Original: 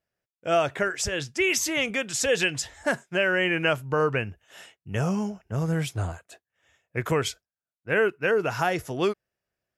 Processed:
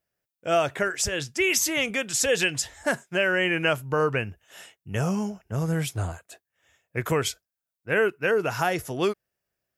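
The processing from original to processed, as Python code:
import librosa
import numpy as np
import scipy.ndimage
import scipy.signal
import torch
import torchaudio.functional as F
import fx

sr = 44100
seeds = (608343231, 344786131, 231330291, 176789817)

y = fx.high_shelf(x, sr, hz=9900.0, db=10.5)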